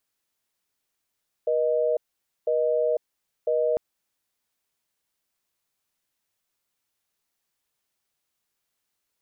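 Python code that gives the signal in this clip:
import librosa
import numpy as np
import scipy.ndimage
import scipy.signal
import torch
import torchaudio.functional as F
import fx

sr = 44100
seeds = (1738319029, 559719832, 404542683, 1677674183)

y = fx.call_progress(sr, length_s=2.3, kind='busy tone', level_db=-23.0)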